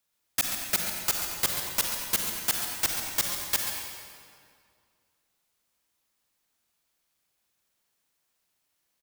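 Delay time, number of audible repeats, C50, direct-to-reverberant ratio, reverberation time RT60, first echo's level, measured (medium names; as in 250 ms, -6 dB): 137 ms, 2, 0.5 dB, 0.5 dB, 2.1 s, -10.0 dB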